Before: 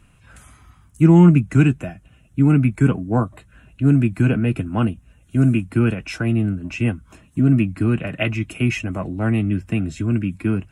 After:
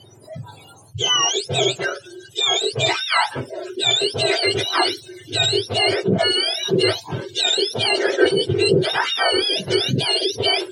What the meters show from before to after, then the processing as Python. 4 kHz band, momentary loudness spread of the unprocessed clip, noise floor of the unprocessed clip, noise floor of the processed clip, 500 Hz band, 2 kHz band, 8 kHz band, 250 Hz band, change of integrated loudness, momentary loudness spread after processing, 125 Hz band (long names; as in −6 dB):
+23.5 dB, 10 LU, −53 dBFS, −46 dBFS, +7.0 dB, +7.5 dB, can't be measured, −10.0 dB, +0.5 dB, 9 LU, −12.0 dB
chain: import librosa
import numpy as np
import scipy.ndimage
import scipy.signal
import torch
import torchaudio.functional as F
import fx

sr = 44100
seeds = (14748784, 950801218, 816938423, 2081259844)

y = fx.octave_mirror(x, sr, pivot_hz=1000.0)
y = fx.rider(y, sr, range_db=5, speed_s=0.5)
y = fx.noise_reduce_blind(y, sr, reduce_db=24)
y = fx.bandpass_edges(y, sr, low_hz=110.0, high_hz=2600.0)
y = fx.env_flatten(y, sr, amount_pct=50)
y = F.gain(torch.from_numpy(y), 3.0).numpy()